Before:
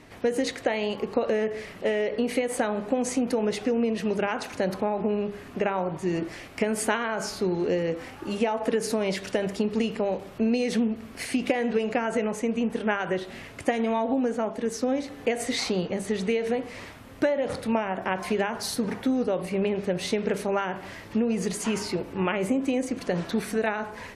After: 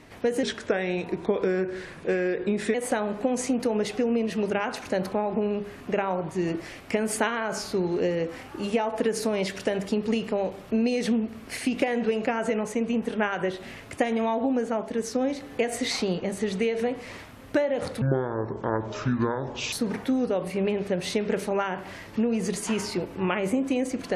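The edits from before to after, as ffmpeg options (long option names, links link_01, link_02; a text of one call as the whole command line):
ffmpeg -i in.wav -filter_complex "[0:a]asplit=5[link_01][link_02][link_03][link_04][link_05];[link_01]atrim=end=0.434[link_06];[link_02]atrim=start=0.43:end=2.42,asetpts=PTS-STARTPTS,asetrate=37926,aresample=44100,atrim=end_sample=102045,asetpts=PTS-STARTPTS[link_07];[link_03]atrim=start=2.416:end=17.694[link_08];[link_04]atrim=start=17.69:end=18.7,asetpts=PTS-STARTPTS,asetrate=26019,aresample=44100,atrim=end_sample=75493,asetpts=PTS-STARTPTS[link_09];[link_05]atrim=start=18.696[link_10];[link_06][link_07]acrossfade=duration=0.004:curve1=hsin:curve2=hsin[link_11];[link_11][link_08]acrossfade=duration=0.004:curve1=hsin:curve2=hsin[link_12];[link_12][link_09]acrossfade=duration=0.004:curve1=hsin:curve2=hsin[link_13];[link_13][link_10]acrossfade=duration=0.004:curve1=hsin:curve2=hsin" out.wav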